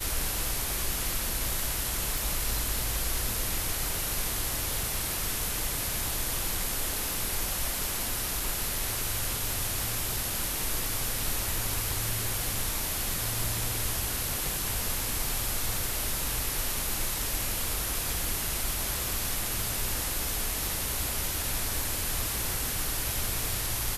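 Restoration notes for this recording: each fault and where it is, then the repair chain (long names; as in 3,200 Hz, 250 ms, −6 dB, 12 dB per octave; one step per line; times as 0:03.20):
0:02.18: click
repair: click removal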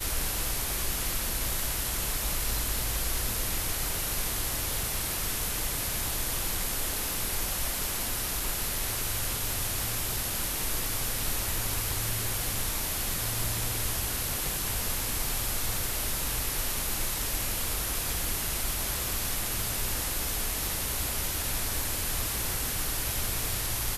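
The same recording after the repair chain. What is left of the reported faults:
none of them is left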